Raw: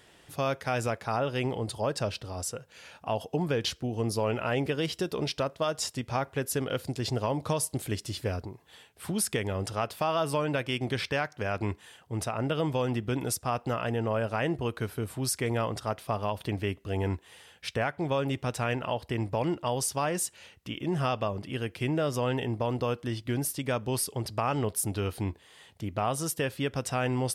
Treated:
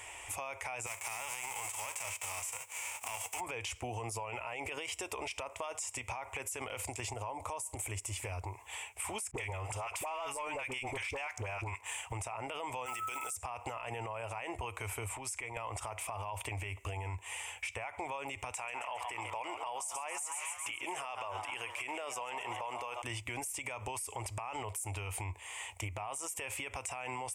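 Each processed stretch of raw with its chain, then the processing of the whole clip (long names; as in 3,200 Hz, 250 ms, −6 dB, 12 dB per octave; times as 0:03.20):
0:00.86–0:03.39: spectral envelope flattened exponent 0.3 + high-pass filter 120 Hz + amplitude modulation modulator 240 Hz, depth 20%
0:07.13–0:08.16: parametric band 3,200 Hz −6 dB 2.4 octaves + downward compressor, threshold −32 dBFS
0:09.31–0:12.12: all-pass dispersion highs, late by 55 ms, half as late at 700 Hz + leveller curve on the samples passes 1
0:12.85–0:13.34: one scale factor per block 7 bits + RIAA equalisation recording + steady tone 1,300 Hz −34 dBFS
0:15.09–0:15.57: high-shelf EQ 7,700 Hz −8.5 dB + downward compressor 12 to 1, threshold −38 dBFS
0:18.51–0:23.02: high-pass filter 480 Hz 6 dB per octave + echo with shifted repeats 134 ms, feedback 60%, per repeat +120 Hz, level −15 dB
whole clip: drawn EQ curve 100 Hz 0 dB, 160 Hz −30 dB, 250 Hz −15 dB, 570 Hz −3 dB, 950 Hz +9 dB, 1,600 Hz −6 dB, 2,300 Hz +13 dB, 4,200 Hz −12 dB, 7,700 Hz +13 dB, 12,000 Hz 0 dB; brickwall limiter −31 dBFS; downward compressor, threshold −43 dBFS; level +6.5 dB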